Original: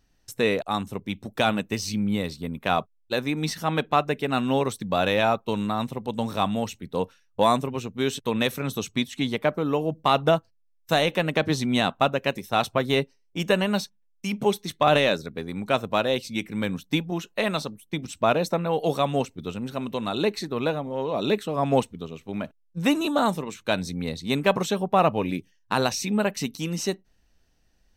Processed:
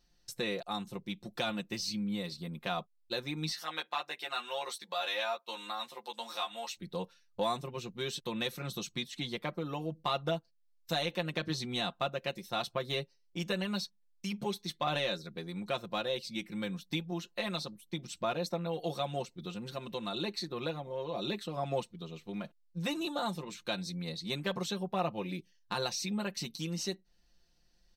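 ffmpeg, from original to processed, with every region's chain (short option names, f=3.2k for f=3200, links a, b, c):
-filter_complex "[0:a]asettb=1/sr,asplit=3[a][b][c];[a]atrim=end=3.524[d];[b]atrim=start=3.52:end=6.77,asetpts=PTS-STARTPTS,afade=t=in:d=0.004:c=qsin,afade=t=out:st=3.246:d=0.004:c=qsin,highpass=780,asplit=2[e][f];[f]adelay=13,volume=-2.5dB[g];[e][g]amix=inputs=2:normalize=0,atrim=end_sample=143325[h];[c]atrim=start=6.766[i];[d][h]acrossfade=d=0.004:c1=hsin:c2=qsin[j];[j][i]acrossfade=d=0.004:c1=qsin:c2=hsin,equalizer=f=4.4k:t=o:w=0.67:g=9,aecho=1:1:5.7:0.77,acompressor=threshold=-35dB:ratio=1.5,volume=-7.5dB"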